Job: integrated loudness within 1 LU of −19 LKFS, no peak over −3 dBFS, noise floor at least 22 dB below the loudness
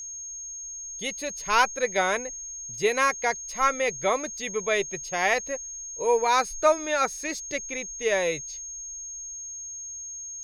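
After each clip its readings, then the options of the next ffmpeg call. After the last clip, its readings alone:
interfering tone 6,500 Hz; level of the tone −35 dBFS; integrated loudness −27.0 LKFS; sample peak −7.0 dBFS; target loudness −19.0 LKFS
→ -af "bandreject=frequency=6500:width=30"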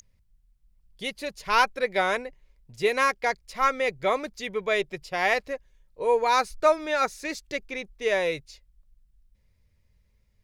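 interfering tone none found; integrated loudness −26.0 LKFS; sample peak −7.5 dBFS; target loudness −19.0 LKFS
→ -af "volume=7dB,alimiter=limit=-3dB:level=0:latency=1"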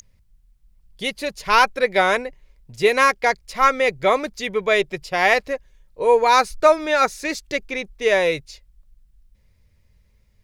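integrated loudness −19.5 LKFS; sample peak −3.0 dBFS; background noise floor −59 dBFS

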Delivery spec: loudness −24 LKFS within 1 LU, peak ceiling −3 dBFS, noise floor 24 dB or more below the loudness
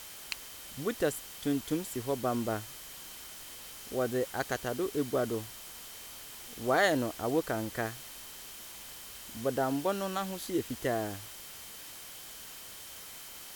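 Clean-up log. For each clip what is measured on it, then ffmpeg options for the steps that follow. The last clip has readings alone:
interfering tone 3,100 Hz; level of the tone −57 dBFS; background noise floor −47 dBFS; target noise floor −59 dBFS; integrated loudness −35.0 LKFS; sample peak −14.5 dBFS; target loudness −24.0 LKFS
→ -af "bandreject=frequency=3100:width=30"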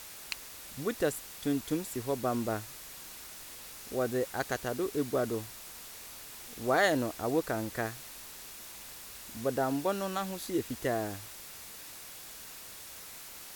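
interfering tone none found; background noise floor −47 dBFS; target noise floor −59 dBFS
→ -af "afftdn=noise_reduction=12:noise_floor=-47"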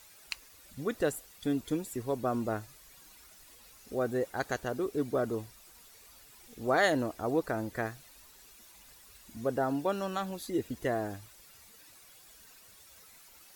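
background noise floor −57 dBFS; target noise floor −58 dBFS
→ -af "afftdn=noise_reduction=6:noise_floor=-57"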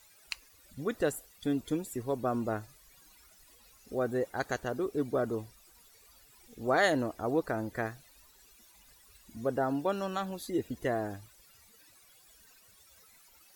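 background noise floor −61 dBFS; integrated loudness −33.5 LKFS; sample peak −15.0 dBFS; target loudness −24.0 LKFS
→ -af "volume=9.5dB"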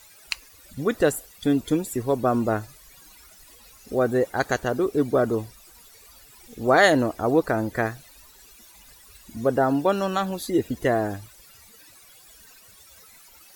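integrated loudness −24.0 LKFS; sample peak −5.5 dBFS; background noise floor −51 dBFS

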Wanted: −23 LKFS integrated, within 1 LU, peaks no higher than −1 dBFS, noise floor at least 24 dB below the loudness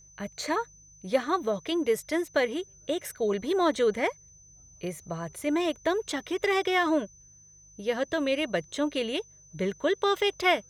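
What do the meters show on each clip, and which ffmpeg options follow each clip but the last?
mains hum 50 Hz; hum harmonics up to 150 Hz; level of the hum −60 dBFS; interfering tone 6,100 Hz; level of the tone −53 dBFS; integrated loudness −28.5 LKFS; sample peak −11.5 dBFS; target loudness −23.0 LKFS
→ -af "bandreject=frequency=50:width_type=h:width=4,bandreject=frequency=100:width_type=h:width=4,bandreject=frequency=150:width_type=h:width=4"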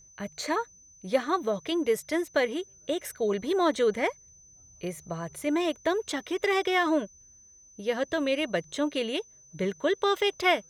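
mains hum none found; interfering tone 6,100 Hz; level of the tone −53 dBFS
→ -af "bandreject=frequency=6100:width=30"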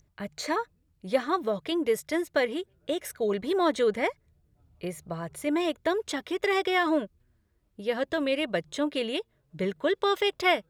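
interfering tone none found; integrated loudness −28.5 LKFS; sample peak −11.5 dBFS; target loudness −23.0 LKFS
→ -af "volume=5.5dB"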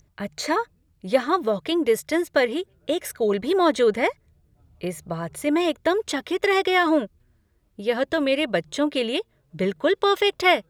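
integrated loudness −23.0 LKFS; sample peak −6.0 dBFS; background noise floor −65 dBFS

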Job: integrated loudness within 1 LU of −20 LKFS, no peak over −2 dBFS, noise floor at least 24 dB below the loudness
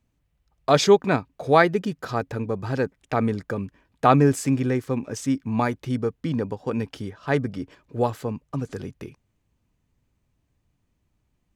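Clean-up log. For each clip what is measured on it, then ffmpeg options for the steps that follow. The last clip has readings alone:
integrated loudness −24.0 LKFS; sample peak −2.5 dBFS; target loudness −20.0 LKFS
→ -af "volume=4dB,alimiter=limit=-2dB:level=0:latency=1"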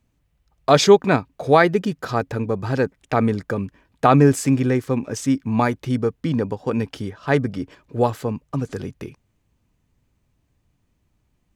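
integrated loudness −20.5 LKFS; sample peak −2.0 dBFS; background noise floor −69 dBFS

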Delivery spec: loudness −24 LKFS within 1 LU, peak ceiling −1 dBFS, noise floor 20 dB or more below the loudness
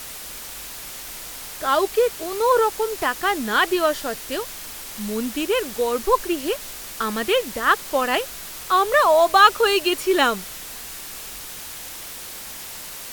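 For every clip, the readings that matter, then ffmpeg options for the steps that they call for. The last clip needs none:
background noise floor −36 dBFS; target noise floor −41 dBFS; integrated loudness −20.5 LKFS; sample peak −2.5 dBFS; target loudness −24.0 LKFS
→ -af "afftdn=noise_reduction=6:noise_floor=-36"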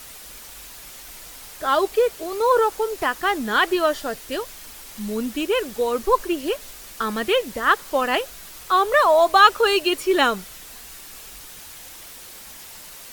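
background noise floor −41 dBFS; integrated loudness −20.5 LKFS; sample peak −2.5 dBFS; target loudness −24.0 LKFS
→ -af "volume=-3.5dB"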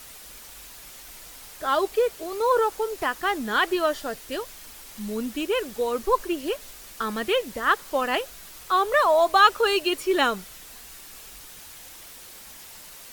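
integrated loudness −24.0 LKFS; sample peak −6.0 dBFS; background noise floor −45 dBFS

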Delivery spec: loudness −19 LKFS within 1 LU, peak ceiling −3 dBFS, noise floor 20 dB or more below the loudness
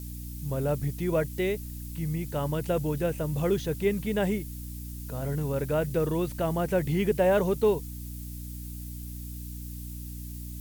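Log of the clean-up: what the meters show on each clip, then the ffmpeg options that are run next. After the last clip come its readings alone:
mains hum 60 Hz; hum harmonics up to 300 Hz; level of the hum −36 dBFS; background noise floor −39 dBFS; target noise floor −50 dBFS; integrated loudness −30.0 LKFS; sample peak −13.5 dBFS; target loudness −19.0 LKFS
→ -af "bandreject=frequency=60:width_type=h:width=4,bandreject=frequency=120:width_type=h:width=4,bandreject=frequency=180:width_type=h:width=4,bandreject=frequency=240:width_type=h:width=4,bandreject=frequency=300:width_type=h:width=4"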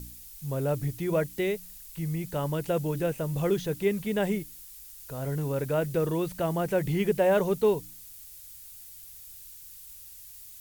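mains hum none found; background noise floor −47 dBFS; target noise floor −49 dBFS
→ -af "afftdn=noise_reduction=6:noise_floor=-47"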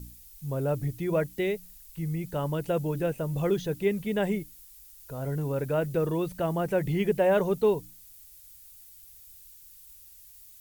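background noise floor −52 dBFS; integrated loudness −28.5 LKFS; sample peak −13.5 dBFS; target loudness −19.0 LKFS
→ -af "volume=9.5dB"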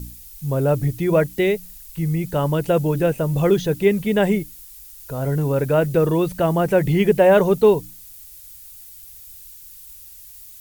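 integrated loudness −19.0 LKFS; sample peak −4.0 dBFS; background noise floor −42 dBFS

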